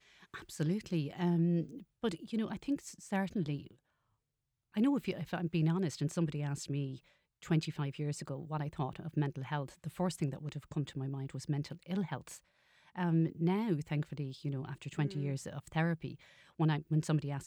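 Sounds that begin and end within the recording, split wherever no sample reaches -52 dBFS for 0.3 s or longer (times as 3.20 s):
4.74–6.98 s
7.42–12.38 s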